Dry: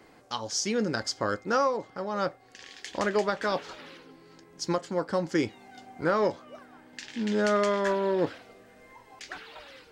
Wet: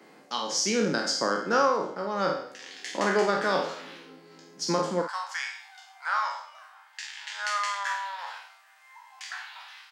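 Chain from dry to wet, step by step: spectral sustain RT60 0.65 s; steep high-pass 150 Hz 48 dB/octave, from 5.01 s 820 Hz; doubling 50 ms -9 dB

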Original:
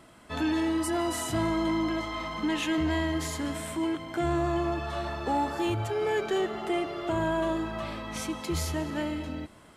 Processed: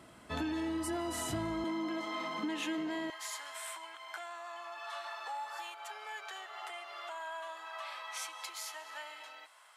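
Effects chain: compression, threshold -31 dBFS, peak gain reduction 7.5 dB; high-pass 50 Hz 24 dB/octave, from 1.64 s 200 Hz, from 3.10 s 820 Hz; trim -2 dB

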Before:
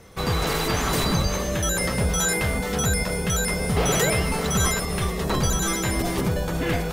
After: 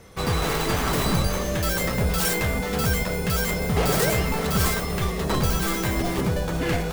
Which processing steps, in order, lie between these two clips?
tracing distortion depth 0.28 ms

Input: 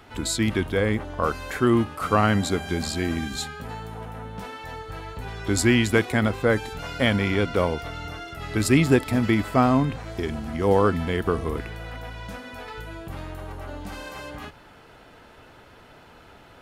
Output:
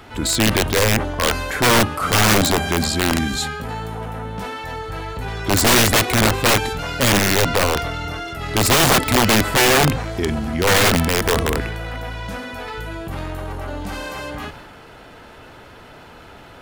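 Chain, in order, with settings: transient shaper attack -3 dB, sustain +4 dB; integer overflow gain 16.5 dB; trim +7.5 dB

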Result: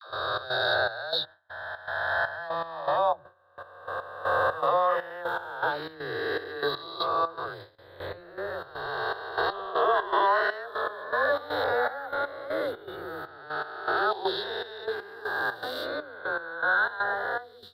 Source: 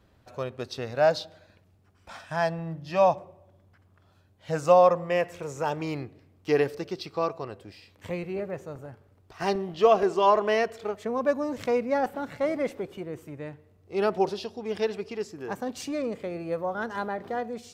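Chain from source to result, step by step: reverse spectral sustain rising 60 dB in 2.86 s; FFT filter 110 Hz 0 dB, 220 Hz -22 dB, 330 Hz -4 dB, 560 Hz -2 dB, 980 Hz +3 dB, 1.6 kHz +14 dB, 2.4 kHz -20 dB, 3.8 kHz +13 dB, 6.4 kHz -29 dB, 12 kHz +1 dB; peak limiter -12 dBFS, peak gain reduction 8 dB; peaking EQ 200 Hz +2 dB; phase dispersion lows, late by 103 ms, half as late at 480 Hz; gate with hold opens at -28 dBFS; trance gate ".xx.xxx..x." 120 bpm -12 dB; trim -3 dB

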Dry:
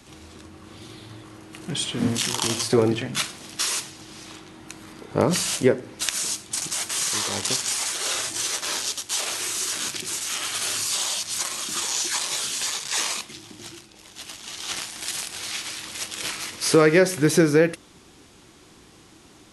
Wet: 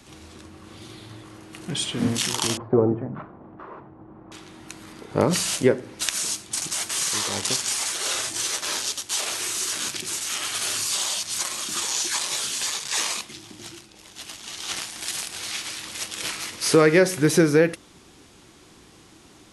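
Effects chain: 2.57–4.32 s: low-pass 1.1 kHz 24 dB/octave

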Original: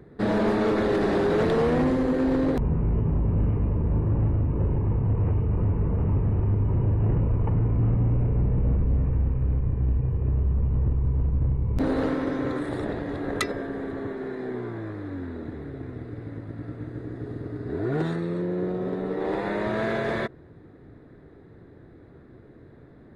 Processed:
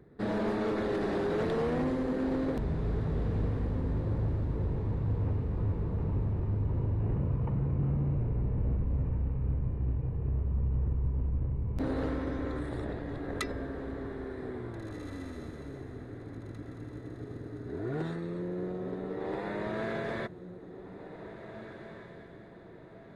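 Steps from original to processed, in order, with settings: 7.17–8.19 s: frequency shift +24 Hz; echo that smears into a reverb 1806 ms, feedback 44%, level -11 dB; trim -8 dB

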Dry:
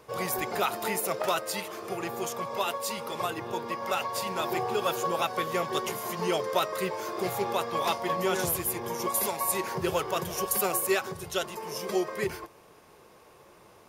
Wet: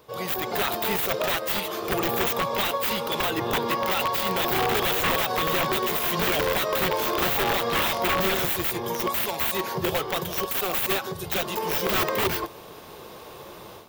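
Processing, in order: resonant high shelf 3.2 kHz +9.5 dB, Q 1.5; level rider gain up to 13 dB; peak limiter -10.5 dBFS, peak gain reduction 9 dB; integer overflow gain 15.5 dB; high-order bell 7.3 kHz -12.5 dB

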